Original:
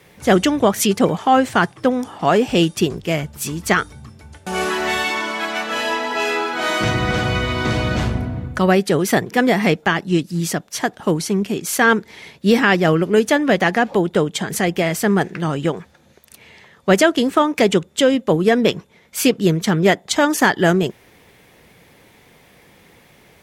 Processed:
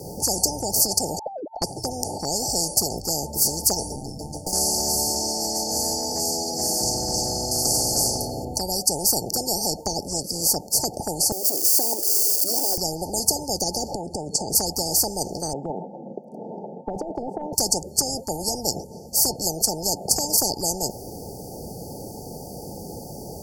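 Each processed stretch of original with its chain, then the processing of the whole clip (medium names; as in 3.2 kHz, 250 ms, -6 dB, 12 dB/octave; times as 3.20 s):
1.19–1.62 s: formants replaced by sine waves + compression, threshold -27 dBFS + low-pass 1.6 kHz 6 dB/octave
3.96–4.53 s: comb 6.4 ms, depth 97% + valve stage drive 33 dB, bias 0.75
7.51–8.45 s: treble shelf 2.8 kHz +11.5 dB + comb 7.3 ms, depth 47%
11.32–12.78 s: zero-crossing glitches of -15.5 dBFS + ladder high-pass 310 Hz, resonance 50% + static phaser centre 500 Hz, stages 4
13.94–14.55 s: low-pass 10 kHz 24 dB/octave + compression 10:1, threshold -27 dBFS
15.53–17.53 s: elliptic band-pass 180–1300 Hz + compressor with a negative ratio -19 dBFS
whole clip: FFT band-reject 900–4400 Hz; dynamic bell 530 Hz, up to +5 dB, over -29 dBFS, Q 1.5; spectrum-flattening compressor 10:1; trim -1 dB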